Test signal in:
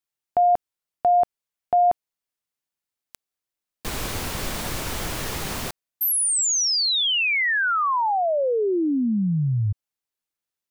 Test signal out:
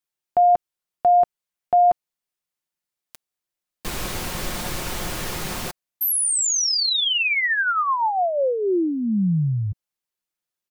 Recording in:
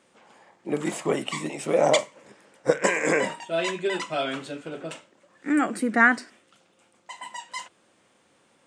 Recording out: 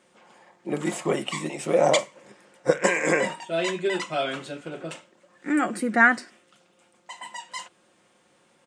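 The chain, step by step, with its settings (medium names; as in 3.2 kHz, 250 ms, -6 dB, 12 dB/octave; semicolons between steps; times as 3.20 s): comb 5.6 ms, depth 33%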